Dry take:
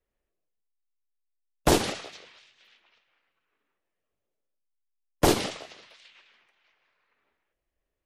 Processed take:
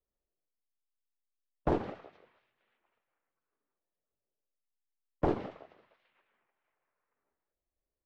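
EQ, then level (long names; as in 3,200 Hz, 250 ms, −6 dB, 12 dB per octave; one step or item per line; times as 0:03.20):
low-pass filter 1,200 Hz 12 dB per octave
−7.5 dB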